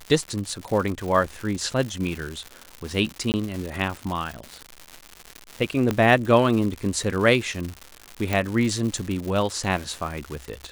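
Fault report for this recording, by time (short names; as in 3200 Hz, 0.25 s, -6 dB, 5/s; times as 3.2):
crackle 210/s -28 dBFS
3.32–3.34 gap 19 ms
5.91 pop -10 dBFS
8.33 pop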